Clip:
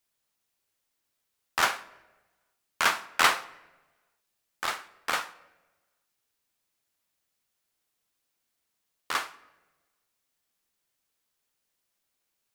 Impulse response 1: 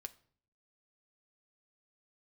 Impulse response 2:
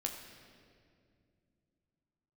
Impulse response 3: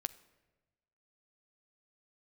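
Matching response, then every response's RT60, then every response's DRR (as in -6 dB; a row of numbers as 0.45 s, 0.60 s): 3; 0.55 s, 2.3 s, 1.2 s; 9.0 dB, 1.5 dB, 13.5 dB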